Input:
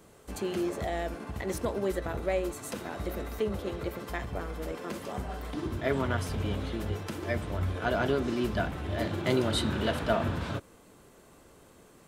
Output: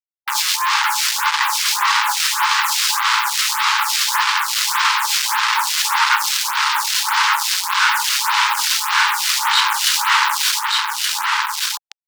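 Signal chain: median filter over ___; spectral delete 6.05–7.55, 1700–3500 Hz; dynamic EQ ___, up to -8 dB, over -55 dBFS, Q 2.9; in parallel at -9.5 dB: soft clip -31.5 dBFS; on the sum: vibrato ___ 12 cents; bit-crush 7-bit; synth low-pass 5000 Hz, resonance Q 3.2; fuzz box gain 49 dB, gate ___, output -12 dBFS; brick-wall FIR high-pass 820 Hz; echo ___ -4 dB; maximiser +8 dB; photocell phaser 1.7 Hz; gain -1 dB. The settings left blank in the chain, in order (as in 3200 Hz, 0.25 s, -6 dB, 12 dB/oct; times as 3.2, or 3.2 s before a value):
9 samples, 2000 Hz, 6.3 Hz, -46 dBFS, 1.173 s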